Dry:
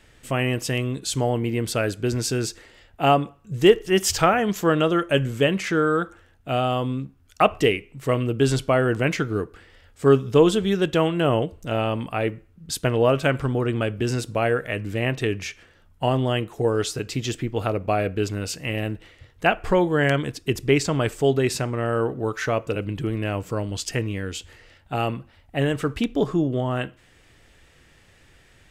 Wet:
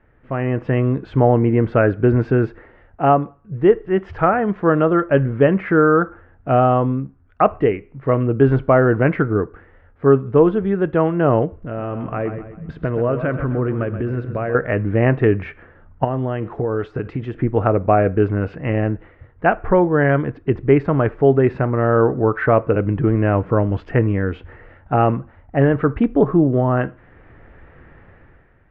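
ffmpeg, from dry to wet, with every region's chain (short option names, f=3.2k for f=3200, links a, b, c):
-filter_complex "[0:a]asettb=1/sr,asplit=3[a][b][c];[a]atrim=end=11.564[d];[b]atrim=start=11.56:end=14.55,asetpts=PTS-STARTPTS,afade=t=in:d=0.004:c=qsin,afade=t=out:st=2.986:d=0.004:c=qsin,equalizer=f=830:w=5.1:g=-7.5,acompressor=threshold=-33dB:ratio=2.5:attack=3.2:release=140:knee=1:detection=peak,aecho=1:1:129|258|387|516|645:0.316|0.136|0.0585|0.0251|0.0108,atrim=end_sample=131859[e];[c]atrim=start=14.546[f];[d][e]acrossfade=d=0.004:c1=hsin:c2=qsin[g];[g][f]acrossfade=d=0.004:c1=qsin:c2=hsin,asettb=1/sr,asplit=3[h][i][j];[h]atrim=end=16.044[k];[i]atrim=start=16.04:end=17.37,asetpts=PTS-STARTPTS,afade=t=in:d=0.004:c=qsin,afade=t=out:st=1.326:d=0.004:c=qsin,aemphasis=mode=production:type=50fm,acompressor=threshold=-28dB:ratio=6:attack=3.2:release=140:knee=1:detection=peak[l];[j]atrim=start=17.366[m];[k][l]acrossfade=d=0.004:c1=hsin:c2=qsin[n];[n][m]acrossfade=d=0.004:c1=qsin:c2=hsin,lowpass=f=1.7k:w=0.5412,lowpass=f=1.7k:w=1.3066,dynaudnorm=f=130:g=9:m=12.5dB,volume=-1dB"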